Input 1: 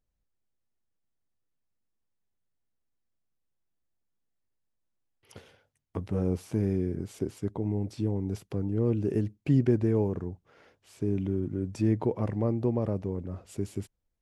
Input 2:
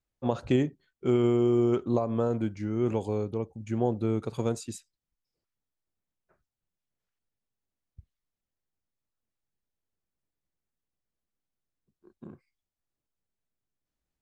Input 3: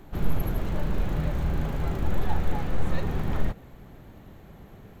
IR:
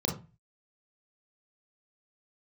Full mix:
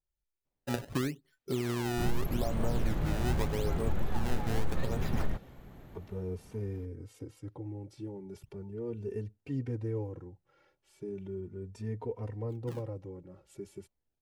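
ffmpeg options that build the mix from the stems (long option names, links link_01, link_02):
-filter_complex "[0:a]aecho=1:1:2.2:0.42,asplit=2[link_01][link_02];[link_02]adelay=3.1,afreqshift=0.37[link_03];[link_01][link_03]amix=inputs=2:normalize=1,volume=-7.5dB,asplit=2[link_04][link_05];[1:a]aecho=1:1:7.3:0.51,acompressor=threshold=-31dB:ratio=2.5,acrusher=samples=23:mix=1:aa=0.000001:lfo=1:lforange=36.8:lforate=0.82,adelay=450,volume=-1.5dB[link_06];[2:a]adelay=1850,volume=-4dB[link_07];[link_05]apad=whole_len=302124[link_08];[link_07][link_08]sidechaincompress=threshold=-38dB:ratio=8:attack=16:release=1410[link_09];[link_04][link_06][link_09]amix=inputs=3:normalize=0,alimiter=limit=-19dB:level=0:latency=1:release=315"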